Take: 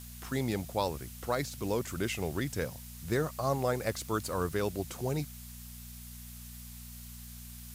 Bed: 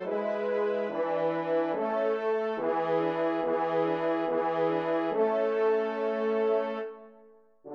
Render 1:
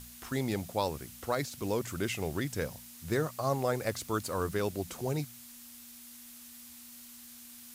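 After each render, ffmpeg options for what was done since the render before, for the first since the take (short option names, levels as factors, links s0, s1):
-af "bandreject=f=60:t=h:w=4,bandreject=f=120:t=h:w=4,bandreject=f=180:t=h:w=4"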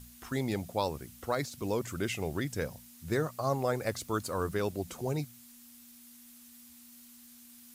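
-af "afftdn=nr=6:nf=-51"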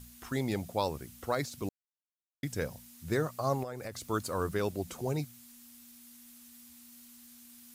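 -filter_complex "[0:a]asettb=1/sr,asplit=3[s0][s1][s2];[s0]atrim=end=3.634[s3];[s1]atrim=start=3.63:end=4.1,asetpts=PTS-STARTPTS,afade=t=in:d=0.004:c=qsin,afade=t=out:st=0.466:d=0.004:c=qsin,acompressor=threshold=0.0141:ratio=5:attack=3.2:release=140:knee=1:detection=peak[s4];[s2]atrim=start=4.096[s5];[s3][s4]acrossfade=d=0.004:c1=hsin:c2=qsin[s6];[s6][s5]acrossfade=d=0.004:c1=qsin:c2=hsin,asplit=3[s7][s8][s9];[s7]atrim=end=1.69,asetpts=PTS-STARTPTS,afade=t=out:st=1.686:d=0.004:c=hsin[s10];[s8]atrim=start=1.69:end=2.43,asetpts=PTS-STARTPTS,volume=0[s11];[s9]atrim=start=2.43,asetpts=PTS-STARTPTS,afade=t=in:d=0.004:c=hsin[s12];[s10][s11][s12]concat=n=3:v=0:a=1"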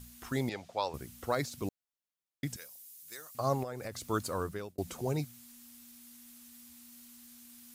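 -filter_complex "[0:a]asettb=1/sr,asplit=3[s0][s1][s2];[s0]atrim=end=0.494[s3];[s1]atrim=start=0.49:end=0.94,asetpts=PTS-STARTPTS,afade=t=in:d=0.004:c=qsin,afade=t=out:st=0.446:d=0.004:c=qsin,acrossover=split=510 6400:gain=0.2 1 0.0891[s4][s5][s6];[s4][s5][s6]amix=inputs=3:normalize=0[s7];[s2]atrim=start=0.936[s8];[s3][s7]acrossfade=d=0.004:c1=hsin:c2=qsin[s9];[s9][s8]acrossfade=d=0.004:c1=qsin:c2=hsin,asettb=1/sr,asplit=3[s10][s11][s12];[s10]atrim=end=2.564[s13];[s11]atrim=start=2.56:end=3.35,asetpts=PTS-STARTPTS,afade=t=in:d=0.004:c=qsin,afade=t=out:st=0.786:d=0.004:c=qsin,aderivative[s14];[s12]atrim=start=3.346[s15];[s13][s14]acrossfade=d=0.004:c1=hsin:c2=qsin[s16];[s16][s15]acrossfade=d=0.004:c1=qsin:c2=hsin,asplit=2[s17][s18];[s17]atrim=end=4.78,asetpts=PTS-STARTPTS,afade=t=out:st=4.28:d=0.5[s19];[s18]atrim=start=4.78,asetpts=PTS-STARTPTS,afade=t=in:d=0.004:c=hsin[s20];[s19][s20]concat=n=2:v=0:a=1"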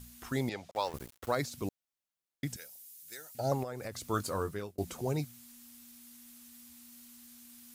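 -filter_complex "[0:a]asettb=1/sr,asplit=3[s0][s1][s2];[s0]atrim=end=0.714[s3];[s1]atrim=start=0.71:end=1.32,asetpts=PTS-STARTPTS,afade=t=in:d=0.004:c=qsin,afade=t=out:st=0.606:d=0.004:c=qsin,aeval=exprs='val(0)*gte(abs(val(0)),0.00596)':c=same[s4];[s2]atrim=start=1.316[s5];[s3][s4]acrossfade=d=0.004:c1=hsin:c2=qsin[s6];[s6][s5]acrossfade=d=0.004:c1=qsin:c2=hsin,asettb=1/sr,asplit=3[s7][s8][s9];[s7]atrim=end=2.544[s10];[s8]atrim=start=2.54:end=3.52,asetpts=PTS-STARTPTS,afade=t=in:d=0.004:c=qsin,afade=t=out:st=0.976:d=0.004:c=qsin,asuperstop=centerf=1100:order=20:qfactor=3.6[s11];[s9]atrim=start=3.516[s12];[s10][s11]acrossfade=d=0.004:c1=hsin:c2=qsin[s13];[s13][s12]acrossfade=d=0.004:c1=qsin:c2=hsin,asettb=1/sr,asplit=3[s14][s15][s16];[s14]atrim=end=4.124[s17];[s15]atrim=start=4.12:end=4.85,asetpts=PTS-STARTPTS,afade=t=in:d=0.004:c=qsin,afade=t=out:st=0.726:d=0.004:c=qsin,asplit=2[s18][s19];[s19]adelay=20,volume=0.335[s20];[s18][s20]amix=inputs=2:normalize=0,atrim=end_sample=32193[s21];[s16]atrim=start=4.846[s22];[s17][s21]acrossfade=d=0.004:c1=hsin:c2=qsin[s23];[s23][s22]acrossfade=d=0.004:c1=qsin:c2=hsin"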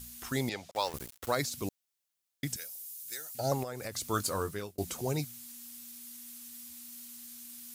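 -af "highshelf=f=2600:g=8"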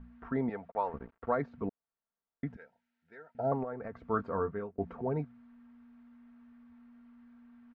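-af "lowpass=f=1500:w=0.5412,lowpass=f=1500:w=1.3066,aecho=1:1:4.4:0.51"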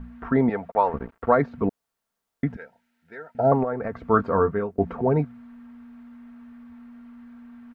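-af "volume=3.98"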